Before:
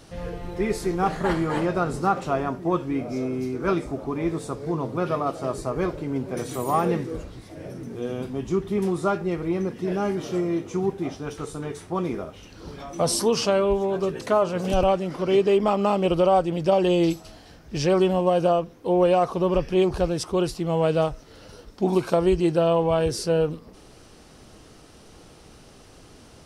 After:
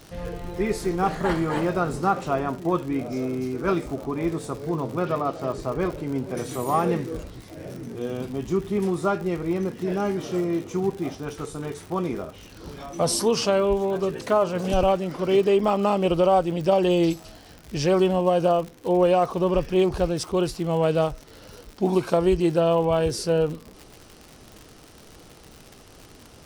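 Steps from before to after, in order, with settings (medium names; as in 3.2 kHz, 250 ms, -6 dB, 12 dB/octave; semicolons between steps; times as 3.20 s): 5.00–5.97 s: low-pass 5.6 kHz 12 dB/octave; crackle 120 per s -33 dBFS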